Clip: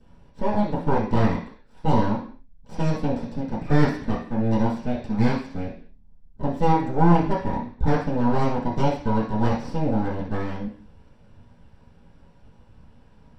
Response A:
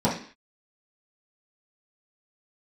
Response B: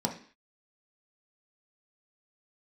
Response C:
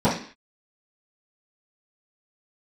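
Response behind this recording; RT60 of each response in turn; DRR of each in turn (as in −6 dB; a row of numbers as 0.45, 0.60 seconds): C; 0.45, 0.45, 0.45 seconds; −9.5, 0.5, −15.5 decibels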